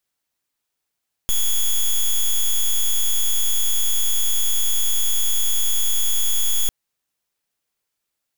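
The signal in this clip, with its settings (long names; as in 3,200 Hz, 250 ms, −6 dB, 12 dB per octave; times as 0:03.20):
pulse wave 3,370 Hz, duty 8% −17.5 dBFS 5.40 s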